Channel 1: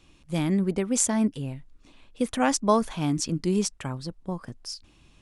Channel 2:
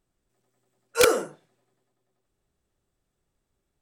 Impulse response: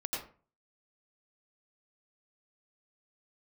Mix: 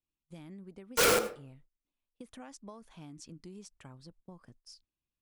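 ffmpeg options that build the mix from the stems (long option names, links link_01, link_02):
-filter_complex "[0:a]agate=range=-21dB:threshold=-43dB:ratio=16:detection=peak,acompressor=threshold=-28dB:ratio=10,volume=-16.5dB[link_01];[1:a]highpass=frequency=290:poles=1,aeval=exprs='val(0)*gte(abs(val(0)),0.0596)':channel_layout=same,volume=1dB,asplit=2[link_02][link_03];[link_03]volume=-13.5dB[link_04];[2:a]atrim=start_sample=2205[link_05];[link_04][link_05]afir=irnorm=-1:irlink=0[link_06];[link_01][link_02][link_06]amix=inputs=3:normalize=0,aeval=exprs='0.126*(abs(mod(val(0)/0.126+3,4)-2)-1)':channel_layout=same"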